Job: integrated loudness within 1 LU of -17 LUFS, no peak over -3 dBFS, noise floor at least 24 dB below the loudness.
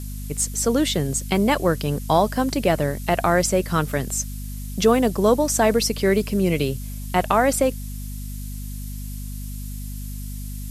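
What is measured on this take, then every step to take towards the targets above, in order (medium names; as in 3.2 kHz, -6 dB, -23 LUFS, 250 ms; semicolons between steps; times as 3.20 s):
hum 50 Hz; highest harmonic 250 Hz; hum level -29 dBFS; noise floor -31 dBFS; noise floor target -45 dBFS; loudness -21.0 LUFS; peak level -5.5 dBFS; loudness target -17.0 LUFS
-> de-hum 50 Hz, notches 5; noise print and reduce 14 dB; trim +4 dB; peak limiter -3 dBFS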